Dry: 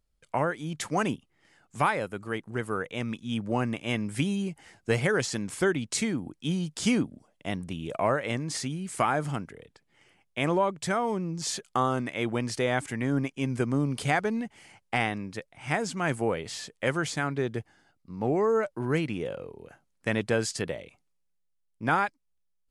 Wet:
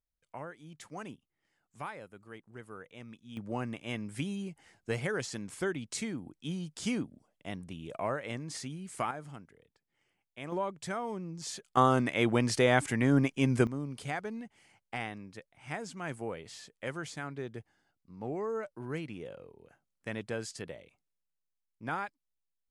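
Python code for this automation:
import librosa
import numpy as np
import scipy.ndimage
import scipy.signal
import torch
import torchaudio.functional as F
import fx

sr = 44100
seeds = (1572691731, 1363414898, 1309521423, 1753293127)

y = fx.gain(x, sr, db=fx.steps((0.0, -16.0), (3.37, -8.0), (9.11, -15.0), (10.52, -8.5), (11.77, 2.0), (13.67, -10.5)))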